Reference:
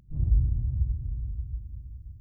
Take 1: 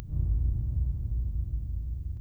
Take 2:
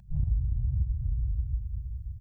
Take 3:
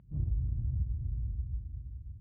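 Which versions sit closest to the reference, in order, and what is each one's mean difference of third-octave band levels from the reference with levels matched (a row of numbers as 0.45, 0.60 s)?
3, 2, 1; 1.0, 2.5, 5.0 dB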